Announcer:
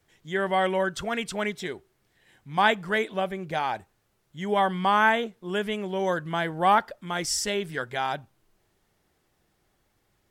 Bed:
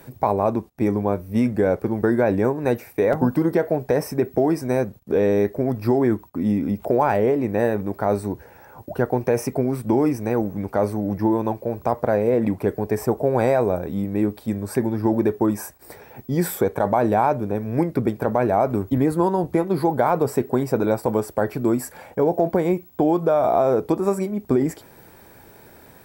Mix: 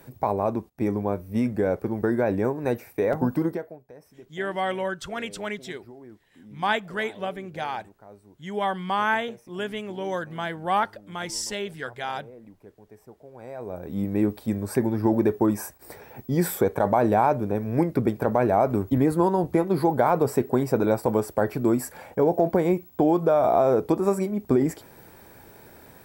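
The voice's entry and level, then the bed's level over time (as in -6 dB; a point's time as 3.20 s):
4.05 s, -3.0 dB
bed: 3.46 s -4.5 dB
3.83 s -27 dB
13.32 s -27 dB
14.03 s -1.5 dB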